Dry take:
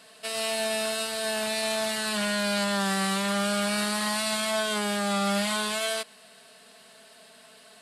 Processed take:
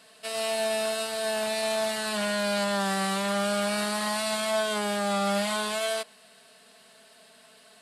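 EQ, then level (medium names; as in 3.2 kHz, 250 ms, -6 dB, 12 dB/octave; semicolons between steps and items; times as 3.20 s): dynamic bell 660 Hz, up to +5 dB, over -40 dBFS, Q 0.98; -2.5 dB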